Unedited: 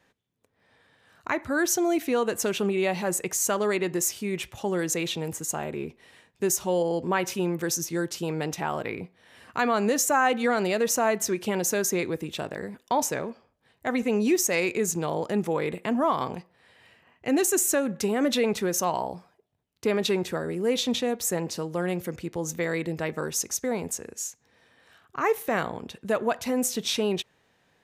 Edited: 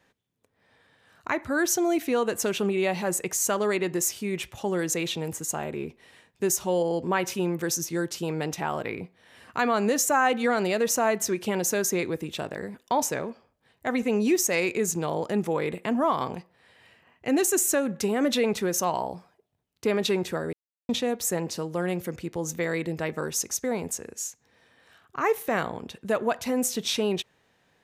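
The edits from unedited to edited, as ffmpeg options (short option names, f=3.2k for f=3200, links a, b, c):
-filter_complex "[0:a]asplit=3[a][b][c];[a]atrim=end=20.53,asetpts=PTS-STARTPTS,afade=t=out:st=20.526:d=0.004:c=hsin[d];[b]atrim=start=20.53:end=20.89,asetpts=PTS-STARTPTS,volume=0[e];[c]atrim=start=20.89,asetpts=PTS-STARTPTS,afade=t=in:d=0.004:c=hsin[f];[d][e][f]concat=n=3:v=0:a=1"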